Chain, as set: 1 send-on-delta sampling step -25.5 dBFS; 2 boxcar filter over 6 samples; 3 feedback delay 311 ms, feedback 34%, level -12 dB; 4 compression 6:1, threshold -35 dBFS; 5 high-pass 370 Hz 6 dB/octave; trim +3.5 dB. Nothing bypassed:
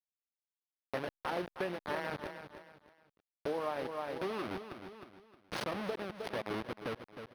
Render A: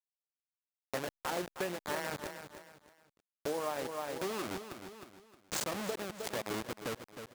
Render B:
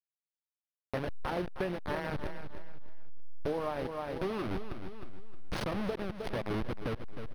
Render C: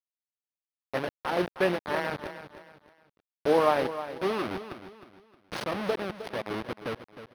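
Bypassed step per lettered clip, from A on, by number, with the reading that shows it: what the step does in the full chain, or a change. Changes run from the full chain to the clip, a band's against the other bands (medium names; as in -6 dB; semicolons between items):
2, 8 kHz band +15.5 dB; 5, 125 Hz band +9.0 dB; 4, mean gain reduction 5.0 dB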